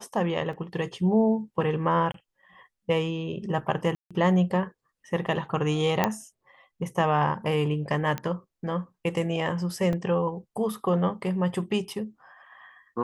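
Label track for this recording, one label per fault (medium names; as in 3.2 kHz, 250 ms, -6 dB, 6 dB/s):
0.530000	0.530000	dropout 2.8 ms
2.120000	2.140000	dropout 23 ms
3.950000	4.110000	dropout 156 ms
6.040000	6.040000	pop -8 dBFS
8.180000	8.180000	pop -16 dBFS
9.930000	9.930000	dropout 2.8 ms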